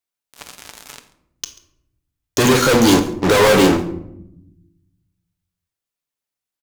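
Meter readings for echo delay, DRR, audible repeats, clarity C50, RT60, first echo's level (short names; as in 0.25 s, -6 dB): 0.138 s, 6.5 dB, 1, 12.0 dB, 0.80 s, -22.0 dB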